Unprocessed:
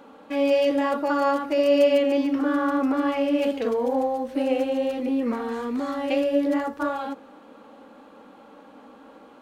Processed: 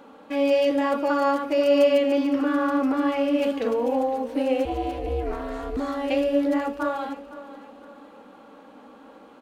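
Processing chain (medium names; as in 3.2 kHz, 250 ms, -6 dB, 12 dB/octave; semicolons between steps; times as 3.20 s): 4.65–5.77 s: ring modulator 200 Hz; on a send: feedback delay 510 ms, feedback 41%, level -16 dB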